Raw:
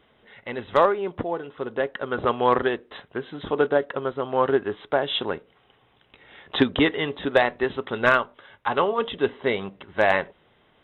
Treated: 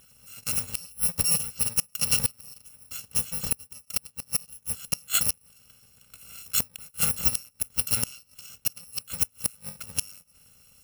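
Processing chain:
samples in bit-reversed order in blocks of 128 samples
gate with flip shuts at −13 dBFS, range −31 dB
level +4 dB

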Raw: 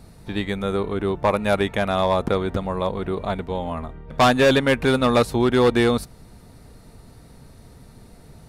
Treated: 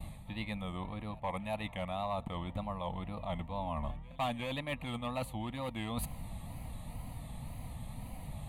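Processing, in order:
tape wow and flutter 150 cents
reversed playback
downward compressor 5 to 1, threshold −37 dBFS, peak gain reduction 20.5 dB
reversed playback
phaser with its sweep stopped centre 1,500 Hz, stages 6
on a send: backwards echo 359 ms −23 dB
on the sum: downward expander −53 dBFS
level +4 dB

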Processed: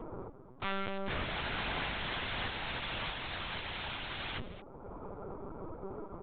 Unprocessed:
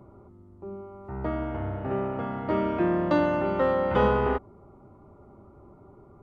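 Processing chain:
Chebyshev high-pass filter 240 Hz, order 6
mains-hum notches 50/100/150/200/250/300/350 Hz
downward expander −48 dBFS
upward compression, threshold −40 dBFS
wrap-around overflow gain 37.5 dB
single-tap delay 219 ms −12.5 dB
linear-prediction vocoder at 8 kHz pitch kept
level +7.5 dB

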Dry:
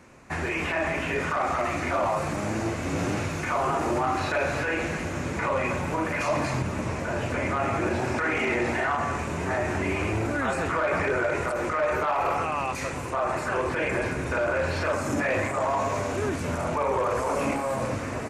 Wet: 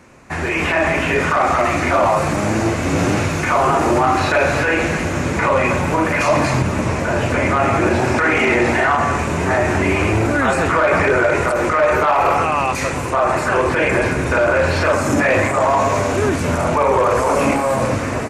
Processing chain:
automatic gain control gain up to 5 dB
level +5.5 dB

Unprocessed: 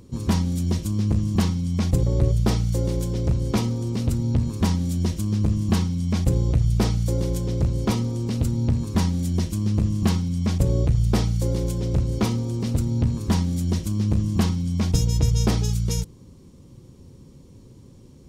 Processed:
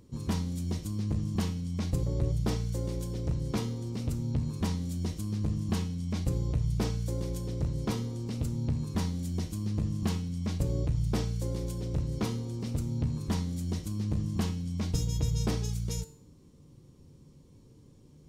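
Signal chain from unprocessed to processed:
tuned comb filter 150 Hz, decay 0.54 s, harmonics all, mix 70%

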